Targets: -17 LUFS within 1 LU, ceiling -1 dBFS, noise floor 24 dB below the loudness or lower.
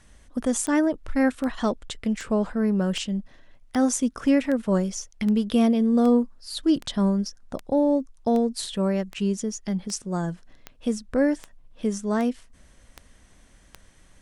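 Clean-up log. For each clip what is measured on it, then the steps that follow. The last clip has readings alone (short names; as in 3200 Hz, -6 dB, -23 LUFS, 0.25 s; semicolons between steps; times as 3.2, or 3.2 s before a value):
clicks 18; loudness -25.0 LUFS; peak -10.5 dBFS; loudness target -17.0 LUFS
-> de-click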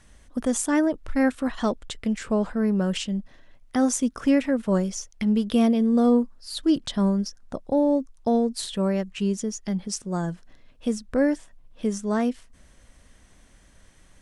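clicks 0; loudness -25.0 LUFS; peak -10.5 dBFS; loudness target -17.0 LUFS
-> gain +8 dB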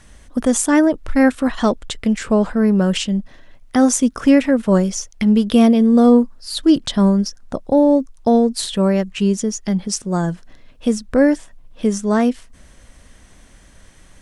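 loudness -17.0 LUFS; peak -2.5 dBFS; noise floor -47 dBFS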